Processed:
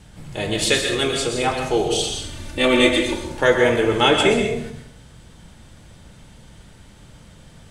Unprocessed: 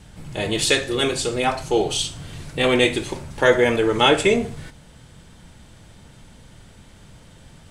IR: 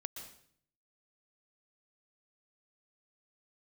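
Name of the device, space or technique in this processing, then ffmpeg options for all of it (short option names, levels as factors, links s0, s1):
bathroom: -filter_complex "[0:a]asettb=1/sr,asplit=3[s0][s1][s2];[s0]atrim=end=2.034[s3];[s1]atrim=start=2.03:end=3.28,asetpts=PTS-STARTPTS,afade=t=in:d=0.004:c=qsin,afade=t=out:st=1.246:d=0.004:c=qsin,aecho=1:1:3.4:0.76,atrim=end_sample=55125[s4];[s2]atrim=start=3.276[s5];[s3][s4]acrossfade=d=0.004:c1=hsin:c2=qsin[s6];[s6][s5]acrossfade=d=0.004:c1=qsin:c2=hsin[s7];[1:a]atrim=start_sample=2205[s8];[s7][s8]afir=irnorm=-1:irlink=0,volume=1.41"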